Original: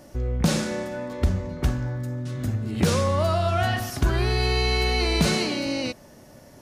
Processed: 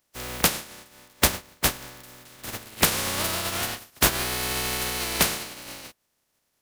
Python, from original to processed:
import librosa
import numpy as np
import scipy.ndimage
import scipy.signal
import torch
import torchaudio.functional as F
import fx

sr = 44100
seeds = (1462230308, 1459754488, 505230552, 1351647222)

y = fx.spec_flatten(x, sr, power=0.24)
y = fx.dynamic_eq(y, sr, hz=6900.0, q=0.9, threshold_db=-36.0, ratio=4.0, max_db=-3)
y = fx.upward_expand(y, sr, threshold_db=-37.0, expansion=2.5)
y = y * librosa.db_to_amplitude(4.0)